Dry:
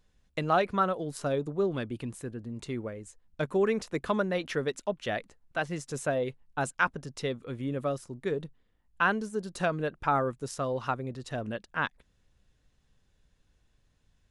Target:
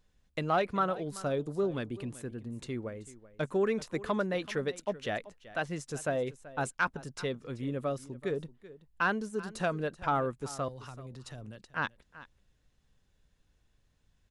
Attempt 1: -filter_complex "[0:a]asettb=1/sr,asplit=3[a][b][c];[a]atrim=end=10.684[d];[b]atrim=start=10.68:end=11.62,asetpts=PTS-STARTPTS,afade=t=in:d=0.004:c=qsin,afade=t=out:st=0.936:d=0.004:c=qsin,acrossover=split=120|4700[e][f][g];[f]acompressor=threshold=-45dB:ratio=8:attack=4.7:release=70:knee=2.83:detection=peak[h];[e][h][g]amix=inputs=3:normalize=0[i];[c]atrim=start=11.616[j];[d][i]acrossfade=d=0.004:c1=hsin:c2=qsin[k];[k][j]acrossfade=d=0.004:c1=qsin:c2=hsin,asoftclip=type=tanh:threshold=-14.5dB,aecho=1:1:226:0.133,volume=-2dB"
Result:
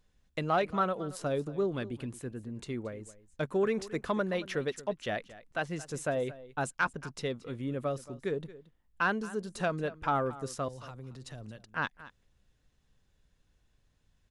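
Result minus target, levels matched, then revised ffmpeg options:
echo 0.156 s early
-filter_complex "[0:a]asettb=1/sr,asplit=3[a][b][c];[a]atrim=end=10.684[d];[b]atrim=start=10.68:end=11.62,asetpts=PTS-STARTPTS,afade=t=in:d=0.004:c=qsin,afade=t=out:st=0.936:d=0.004:c=qsin,acrossover=split=120|4700[e][f][g];[f]acompressor=threshold=-45dB:ratio=8:attack=4.7:release=70:knee=2.83:detection=peak[h];[e][h][g]amix=inputs=3:normalize=0[i];[c]atrim=start=11.616[j];[d][i]acrossfade=d=0.004:c1=hsin:c2=qsin[k];[k][j]acrossfade=d=0.004:c1=qsin:c2=hsin,asoftclip=type=tanh:threshold=-14.5dB,aecho=1:1:382:0.133,volume=-2dB"

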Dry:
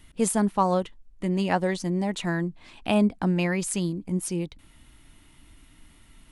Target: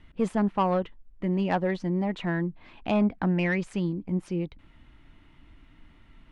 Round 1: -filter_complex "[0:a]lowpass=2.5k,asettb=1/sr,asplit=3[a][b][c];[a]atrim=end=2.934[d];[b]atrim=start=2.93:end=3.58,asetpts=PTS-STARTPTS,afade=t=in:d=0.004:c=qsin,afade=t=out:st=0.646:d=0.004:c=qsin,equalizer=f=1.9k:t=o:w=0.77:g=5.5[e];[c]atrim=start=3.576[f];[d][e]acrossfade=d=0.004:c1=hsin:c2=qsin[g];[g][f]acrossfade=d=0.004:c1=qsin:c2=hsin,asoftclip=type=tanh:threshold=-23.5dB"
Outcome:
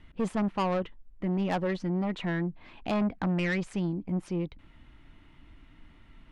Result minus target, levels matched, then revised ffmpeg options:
soft clip: distortion +8 dB
-filter_complex "[0:a]lowpass=2.5k,asettb=1/sr,asplit=3[a][b][c];[a]atrim=end=2.934[d];[b]atrim=start=2.93:end=3.58,asetpts=PTS-STARTPTS,afade=t=in:d=0.004:c=qsin,afade=t=out:st=0.646:d=0.004:c=qsin,equalizer=f=1.9k:t=o:w=0.77:g=5.5[e];[c]atrim=start=3.576[f];[d][e]acrossfade=d=0.004:c1=hsin:c2=qsin[g];[g][f]acrossfade=d=0.004:c1=qsin:c2=hsin,asoftclip=type=tanh:threshold=-16dB"

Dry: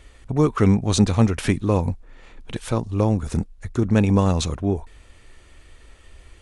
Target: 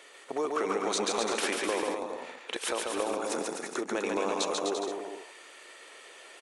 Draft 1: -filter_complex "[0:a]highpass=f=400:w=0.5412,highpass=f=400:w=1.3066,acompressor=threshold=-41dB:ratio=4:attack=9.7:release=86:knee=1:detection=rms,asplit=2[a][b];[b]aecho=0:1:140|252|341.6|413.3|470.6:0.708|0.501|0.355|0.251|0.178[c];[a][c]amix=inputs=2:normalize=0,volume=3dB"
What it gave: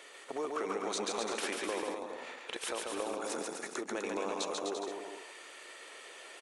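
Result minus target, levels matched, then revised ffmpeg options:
compressor: peak gain reduction +6 dB
-filter_complex "[0:a]highpass=f=400:w=0.5412,highpass=f=400:w=1.3066,acompressor=threshold=-33dB:ratio=4:attack=9.7:release=86:knee=1:detection=rms,asplit=2[a][b];[b]aecho=0:1:140|252|341.6|413.3|470.6:0.708|0.501|0.355|0.251|0.178[c];[a][c]amix=inputs=2:normalize=0,volume=3dB"

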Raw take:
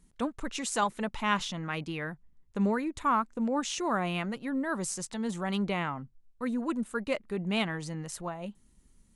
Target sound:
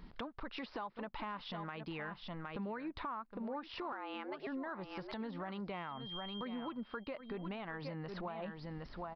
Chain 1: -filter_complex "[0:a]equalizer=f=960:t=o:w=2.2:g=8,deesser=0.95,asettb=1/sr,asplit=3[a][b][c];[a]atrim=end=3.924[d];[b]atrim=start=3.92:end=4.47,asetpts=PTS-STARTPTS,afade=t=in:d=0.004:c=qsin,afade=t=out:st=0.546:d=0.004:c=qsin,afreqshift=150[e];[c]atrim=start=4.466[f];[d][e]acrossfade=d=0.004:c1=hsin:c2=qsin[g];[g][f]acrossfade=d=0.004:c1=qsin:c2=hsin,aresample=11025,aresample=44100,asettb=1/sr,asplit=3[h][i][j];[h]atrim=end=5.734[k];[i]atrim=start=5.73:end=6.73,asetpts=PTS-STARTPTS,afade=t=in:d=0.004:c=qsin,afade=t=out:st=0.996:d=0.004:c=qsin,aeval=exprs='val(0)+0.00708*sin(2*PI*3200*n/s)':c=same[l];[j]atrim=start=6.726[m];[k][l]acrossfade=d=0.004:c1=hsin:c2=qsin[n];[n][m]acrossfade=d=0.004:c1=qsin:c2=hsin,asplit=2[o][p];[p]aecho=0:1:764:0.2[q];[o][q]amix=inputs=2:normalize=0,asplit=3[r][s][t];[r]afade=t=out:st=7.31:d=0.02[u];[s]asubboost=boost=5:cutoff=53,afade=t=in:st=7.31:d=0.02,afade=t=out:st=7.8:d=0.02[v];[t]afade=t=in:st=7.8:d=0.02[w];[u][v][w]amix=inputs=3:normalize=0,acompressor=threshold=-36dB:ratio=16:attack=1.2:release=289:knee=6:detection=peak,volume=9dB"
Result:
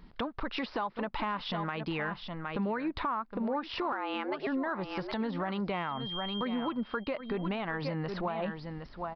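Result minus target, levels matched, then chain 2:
compressor: peak gain reduction -9.5 dB
-filter_complex "[0:a]equalizer=f=960:t=o:w=2.2:g=8,deesser=0.95,asettb=1/sr,asplit=3[a][b][c];[a]atrim=end=3.924[d];[b]atrim=start=3.92:end=4.47,asetpts=PTS-STARTPTS,afade=t=in:d=0.004:c=qsin,afade=t=out:st=0.546:d=0.004:c=qsin,afreqshift=150[e];[c]atrim=start=4.466[f];[d][e]acrossfade=d=0.004:c1=hsin:c2=qsin[g];[g][f]acrossfade=d=0.004:c1=qsin:c2=hsin,aresample=11025,aresample=44100,asettb=1/sr,asplit=3[h][i][j];[h]atrim=end=5.734[k];[i]atrim=start=5.73:end=6.73,asetpts=PTS-STARTPTS,afade=t=in:d=0.004:c=qsin,afade=t=out:st=0.996:d=0.004:c=qsin,aeval=exprs='val(0)+0.00708*sin(2*PI*3200*n/s)':c=same[l];[j]atrim=start=6.726[m];[k][l]acrossfade=d=0.004:c1=hsin:c2=qsin[n];[n][m]acrossfade=d=0.004:c1=qsin:c2=hsin,asplit=2[o][p];[p]aecho=0:1:764:0.2[q];[o][q]amix=inputs=2:normalize=0,asplit=3[r][s][t];[r]afade=t=out:st=7.31:d=0.02[u];[s]asubboost=boost=5:cutoff=53,afade=t=in:st=7.31:d=0.02,afade=t=out:st=7.8:d=0.02[v];[t]afade=t=in:st=7.8:d=0.02[w];[u][v][w]amix=inputs=3:normalize=0,acompressor=threshold=-46dB:ratio=16:attack=1.2:release=289:knee=6:detection=peak,volume=9dB"

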